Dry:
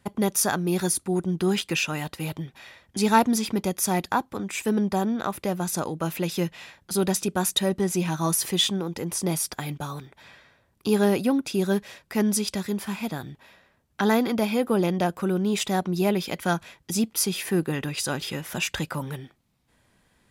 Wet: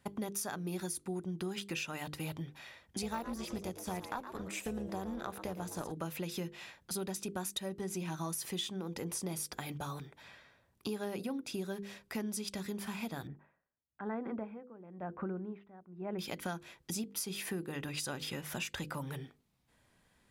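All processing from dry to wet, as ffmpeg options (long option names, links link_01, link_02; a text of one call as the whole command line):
ffmpeg -i in.wav -filter_complex "[0:a]asettb=1/sr,asplit=3[link_01][link_02][link_03];[link_01]atrim=end=3.024[link_04];[link_02]atrim=start=3.02:end=5.92,asetpts=PTS-STARTPTS,afade=type=in:duration=0.004:curve=qsin,afade=type=out:start_time=2.896:duration=0.004:curve=qsin,tremolo=f=280:d=0.621,asplit=4[link_05][link_06][link_07][link_08];[link_06]adelay=114,afreqshift=120,volume=-13dB[link_09];[link_07]adelay=228,afreqshift=240,volume=-22.6dB[link_10];[link_08]adelay=342,afreqshift=360,volume=-32.3dB[link_11];[link_05][link_09][link_10][link_11]amix=inputs=4:normalize=0,atrim=end_sample=127890,deesser=0.6[link_12];[link_03]atrim=start=5.916[link_13];[link_04][link_12]acrossfade=duration=0.004:curve1=hsin:curve2=qsin[link_14];[link_14][link_13]acrossfade=duration=0.004:curve1=qsin:curve2=hsin,asettb=1/sr,asplit=3[link_15][link_16][link_17];[link_15]atrim=end=13.274[link_18];[link_16]atrim=start=13.27:end=16.19,asetpts=PTS-STARTPTS,afade=type=in:duration=0.004:curve=qsin,afade=type=out:start_time=2.916:duration=0.004:curve=qsin,lowpass=frequency=1800:width=0.5412,lowpass=frequency=1800:width=1.3066,aeval=exprs='val(0)*pow(10,-25*(0.5-0.5*cos(2*PI*1*n/s))/20)':channel_layout=same[link_19];[link_17]atrim=start=16.186[link_20];[link_18][link_19]acrossfade=duration=0.004:curve1=hsin:curve2=qsin[link_21];[link_21][link_20]acrossfade=duration=0.004:curve1=qsin:curve2=hsin,bandreject=frequency=50:width_type=h:width=6,bandreject=frequency=100:width_type=h:width=6,bandreject=frequency=150:width_type=h:width=6,bandreject=frequency=200:width_type=h:width=6,bandreject=frequency=250:width_type=h:width=6,bandreject=frequency=300:width_type=h:width=6,bandreject=frequency=350:width_type=h:width=6,bandreject=frequency=400:width_type=h:width=6,bandreject=frequency=450:width_type=h:width=6,bandreject=frequency=500:width_type=h:width=6,acompressor=threshold=-30dB:ratio=6,volume=-5.5dB" out.wav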